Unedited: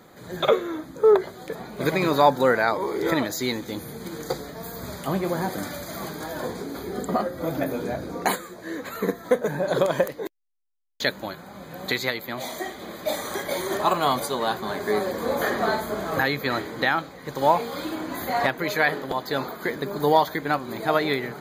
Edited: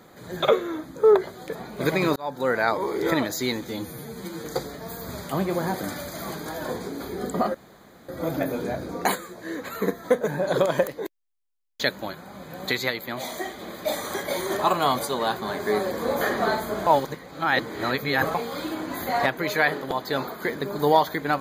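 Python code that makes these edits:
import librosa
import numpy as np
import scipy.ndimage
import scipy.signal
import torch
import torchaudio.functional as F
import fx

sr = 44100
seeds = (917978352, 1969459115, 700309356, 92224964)

y = fx.edit(x, sr, fx.fade_in_span(start_s=2.16, length_s=0.53),
    fx.stretch_span(start_s=3.68, length_s=0.51, factor=1.5),
    fx.insert_room_tone(at_s=7.29, length_s=0.54),
    fx.reverse_span(start_s=16.07, length_s=1.48), tone=tone)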